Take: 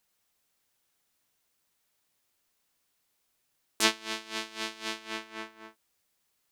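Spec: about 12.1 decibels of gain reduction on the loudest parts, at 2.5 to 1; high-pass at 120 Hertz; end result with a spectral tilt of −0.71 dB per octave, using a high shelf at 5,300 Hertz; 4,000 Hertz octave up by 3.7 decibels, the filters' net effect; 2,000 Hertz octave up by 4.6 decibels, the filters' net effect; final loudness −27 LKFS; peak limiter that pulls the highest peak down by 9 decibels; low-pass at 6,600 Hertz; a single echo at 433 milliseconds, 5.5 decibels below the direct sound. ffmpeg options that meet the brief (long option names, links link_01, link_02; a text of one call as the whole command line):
ffmpeg -i in.wav -af "highpass=120,lowpass=6600,equalizer=frequency=2000:width_type=o:gain=5,equalizer=frequency=4000:width_type=o:gain=5.5,highshelf=frequency=5300:gain=-5,acompressor=threshold=-33dB:ratio=2.5,alimiter=limit=-21dB:level=0:latency=1,aecho=1:1:433:0.531,volume=12dB" out.wav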